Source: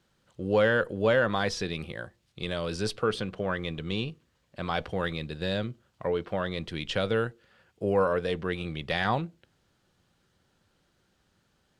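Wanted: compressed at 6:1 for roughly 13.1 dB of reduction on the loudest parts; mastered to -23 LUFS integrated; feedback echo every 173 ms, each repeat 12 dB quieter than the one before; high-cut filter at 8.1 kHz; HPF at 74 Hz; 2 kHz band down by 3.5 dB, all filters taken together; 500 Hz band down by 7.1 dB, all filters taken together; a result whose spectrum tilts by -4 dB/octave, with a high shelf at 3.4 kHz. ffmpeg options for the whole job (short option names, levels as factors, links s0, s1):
-af "highpass=74,lowpass=8100,equalizer=f=500:t=o:g=-8,equalizer=f=2000:t=o:g=-5,highshelf=f=3400:g=3,acompressor=threshold=0.0126:ratio=6,aecho=1:1:173|346|519:0.251|0.0628|0.0157,volume=9.44"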